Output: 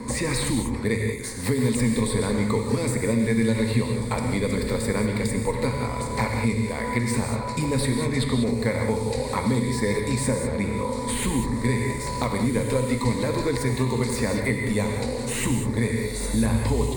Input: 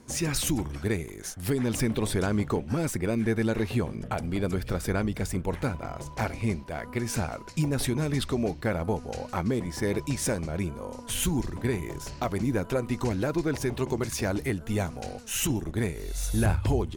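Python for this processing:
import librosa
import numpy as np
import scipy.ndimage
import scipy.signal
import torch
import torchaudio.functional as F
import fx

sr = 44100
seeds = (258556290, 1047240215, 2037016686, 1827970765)

y = fx.ripple_eq(x, sr, per_octave=0.97, db=13)
y = fx.echo_diffused(y, sr, ms=1583, feedback_pct=42, wet_db=-15)
y = fx.rev_gated(y, sr, seeds[0], gate_ms=220, shape='flat', drr_db=2.5)
y = fx.band_squash(y, sr, depth_pct=70)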